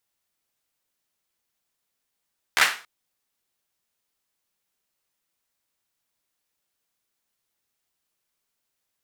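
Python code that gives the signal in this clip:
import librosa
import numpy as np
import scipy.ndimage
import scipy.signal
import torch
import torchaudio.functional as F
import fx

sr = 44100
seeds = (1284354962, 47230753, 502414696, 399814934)

y = fx.drum_clap(sr, seeds[0], length_s=0.28, bursts=4, spacing_ms=14, hz=1700.0, decay_s=0.36)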